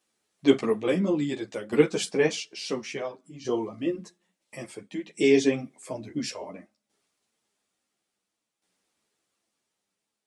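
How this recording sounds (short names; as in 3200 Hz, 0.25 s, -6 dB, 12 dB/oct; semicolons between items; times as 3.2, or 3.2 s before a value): tremolo saw down 0.58 Hz, depth 70%; a shimmering, thickened sound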